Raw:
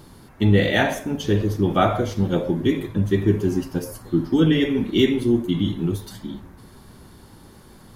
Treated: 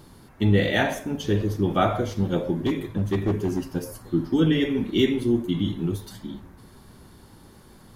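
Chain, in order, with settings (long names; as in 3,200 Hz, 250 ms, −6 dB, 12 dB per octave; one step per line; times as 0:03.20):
0:02.66–0:03.63: gain into a clipping stage and back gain 15.5 dB
level −3 dB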